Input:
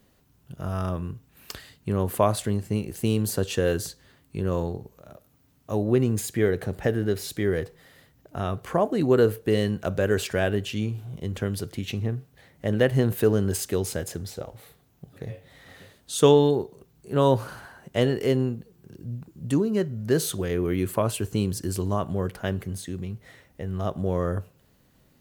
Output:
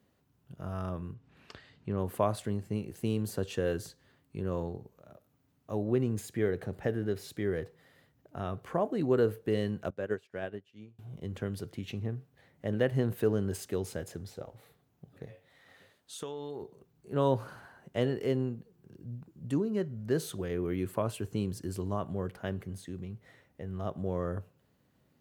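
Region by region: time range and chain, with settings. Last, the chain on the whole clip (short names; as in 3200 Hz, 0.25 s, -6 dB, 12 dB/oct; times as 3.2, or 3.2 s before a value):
1.14–1.98 LPF 4500 Hz + upward compressor, threshold -44 dBFS
9.9–10.99 HPF 140 Hz 6 dB/oct + high shelf 7100 Hz -8 dB + upward expander 2.5:1, over -38 dBFS
15.26–16.62 low shelf 430 Hz -9.5 dB + compressor 16:1, threshold -27 dBFS
whole clip: HPF 76 Hz; high shelf 3400 Hz -7 dB; gain -7 dB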